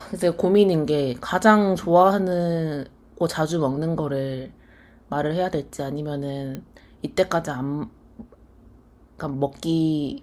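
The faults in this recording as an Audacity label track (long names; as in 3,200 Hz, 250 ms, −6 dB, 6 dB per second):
6.550000	6.550000	click −19 dBFS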